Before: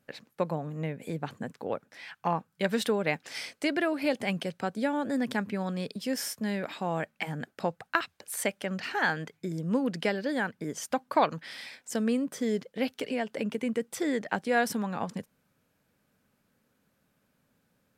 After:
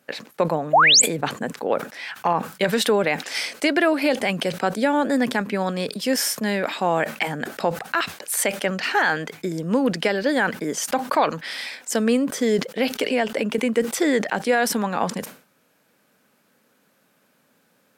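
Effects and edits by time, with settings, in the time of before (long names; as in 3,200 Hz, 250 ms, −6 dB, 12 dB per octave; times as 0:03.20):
0:00.73–0:01.02: sound drawn into the spectrogram rise 570–8,600 Hz −21 dBFS
whole clip: Bessel high-pass filter 290 Hz, order 2; boost into a limiter +19.5 dB; level that may fall only so fast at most 140 dB per second; level −8 dB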